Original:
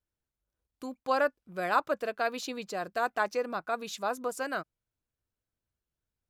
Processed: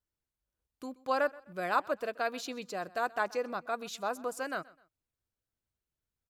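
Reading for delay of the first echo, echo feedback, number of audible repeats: 0.128 s, 34%, 2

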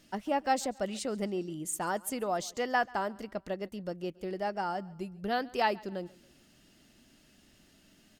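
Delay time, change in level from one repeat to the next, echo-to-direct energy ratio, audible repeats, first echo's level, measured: 0.138 s, -7.0 dB, -22.5 dB, 2, -23.5 dB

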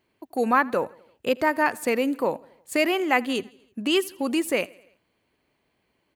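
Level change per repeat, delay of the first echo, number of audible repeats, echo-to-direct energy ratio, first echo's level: -4.5 dB, 82 ms, 3, -22.5 dB, -24.0 dB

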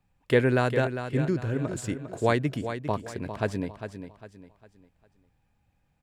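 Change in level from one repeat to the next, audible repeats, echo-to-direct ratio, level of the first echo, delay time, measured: -9.0 dB, 3, -9.0 dB, -9.5 dB, 0.402 s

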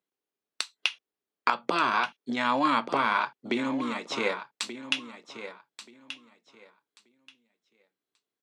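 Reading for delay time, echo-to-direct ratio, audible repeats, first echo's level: 1.181 s, -12.0 dB, 2, -12.0 dB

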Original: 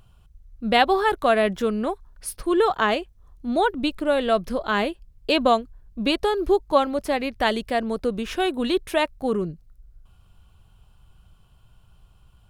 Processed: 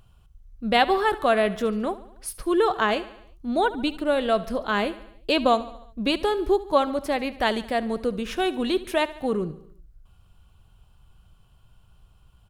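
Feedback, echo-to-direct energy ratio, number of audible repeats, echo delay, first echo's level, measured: 57%, -15.5 dB, 4, 72 ms, -17.0 dB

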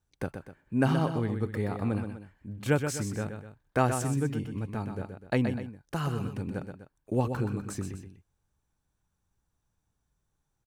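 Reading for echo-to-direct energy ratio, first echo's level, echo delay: -6.5 dB, -7.5 dB, 0.125 s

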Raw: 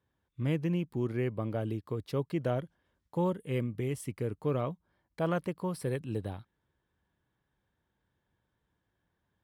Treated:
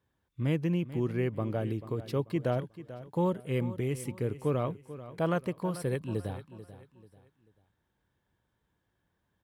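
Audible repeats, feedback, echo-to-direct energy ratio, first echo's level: 3, 34%, -14.0 dB, -14.5 dB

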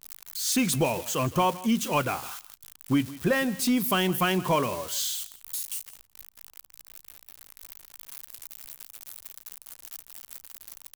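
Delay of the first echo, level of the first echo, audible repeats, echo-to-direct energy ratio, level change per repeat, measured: 0.163 s, -18.5 dB, 1, -18.5 dB, no steady repeat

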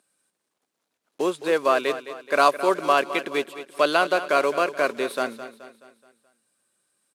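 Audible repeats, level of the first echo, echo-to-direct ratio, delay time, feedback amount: 4, -13.0 dB, -12.0 dB, 0.213 s, 47%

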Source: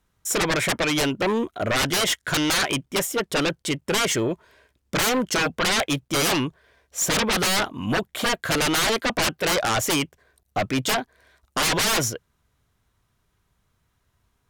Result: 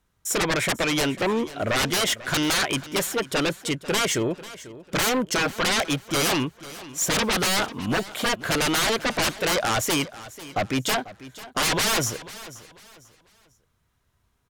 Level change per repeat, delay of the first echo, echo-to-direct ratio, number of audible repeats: -10.0 dB, 0.493 s, -16.5 dB, 2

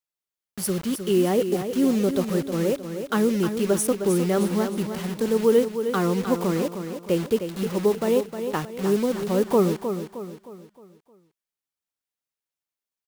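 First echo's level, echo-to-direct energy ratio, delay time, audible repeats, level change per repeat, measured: -8.5 dB, -7.5 dB, 0.31 s, 4, -7.5 dB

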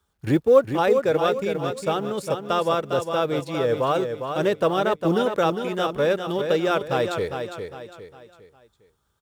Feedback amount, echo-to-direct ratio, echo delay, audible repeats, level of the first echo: 38%, -6.5 dB, 0.405 s, 4, -7.0 dB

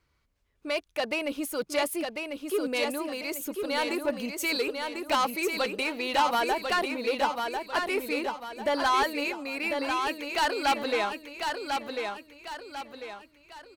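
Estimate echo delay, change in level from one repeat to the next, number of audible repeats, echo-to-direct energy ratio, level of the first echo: 1.046 s, -8.0 dB, 4, -4.0 dB, -5.0 dB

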